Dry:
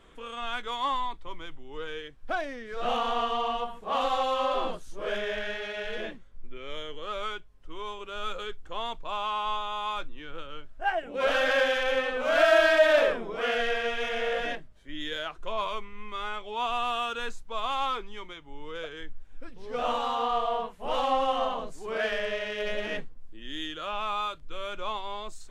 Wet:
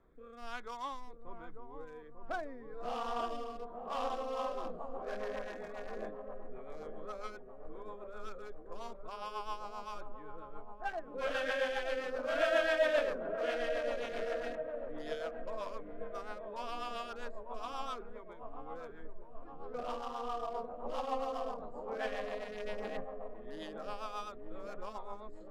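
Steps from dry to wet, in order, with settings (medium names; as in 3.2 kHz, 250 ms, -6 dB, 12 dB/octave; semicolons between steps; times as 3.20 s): local Wiener filter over 15 samples; feedback echo behind a low-pass 895 ms, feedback 58%, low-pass 840 Hz, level -5 dB; rotary cabinet horn 1.2 Hz, later 7.5 Hz, at 4.04 s; trim -7 dB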